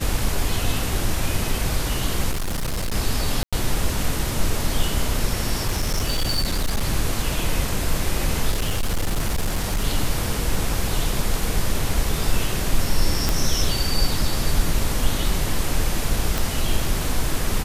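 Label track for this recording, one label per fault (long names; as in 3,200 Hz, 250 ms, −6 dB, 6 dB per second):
2.310000	2.950000	clipping −21 dBFS
3.430000	3.530000	drop-out 96 ms
5.680000	6.850000	clipping −17 dBFS
8.500000	9.850000	clipping −17.5 dBFS
13.290000	13.290000	click
16.380000	16.380000	click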